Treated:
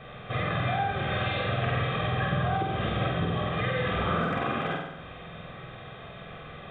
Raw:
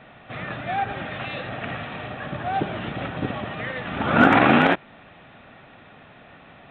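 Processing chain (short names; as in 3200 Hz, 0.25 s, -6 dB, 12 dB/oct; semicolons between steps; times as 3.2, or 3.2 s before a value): compressor 20:1, threshold -29 dBFS, peak gain reduction 20 dB; flutter echo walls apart 8.2 m, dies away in 0.85 s; reverb RT60 0.60 s, pre-delay 3 ms, DRR 10.5 dB; gain -2 dB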